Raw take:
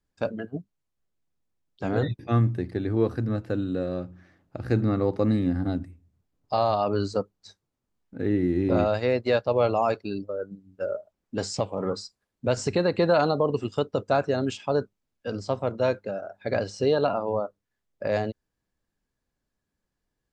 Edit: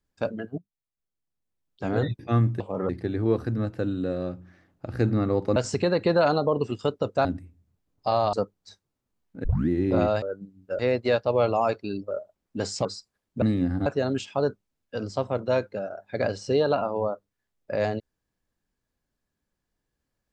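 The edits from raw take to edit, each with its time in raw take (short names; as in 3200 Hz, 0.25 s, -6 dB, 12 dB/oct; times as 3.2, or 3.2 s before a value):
0.58–1.89 fade in quadratic, from -13 dB
5.27–5.71 swap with 12.49–14.18
6.79–7.11 cut
8.22 tape start 0.25 s
10.32–10.89 move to 9
11.63–11.92 move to 2.6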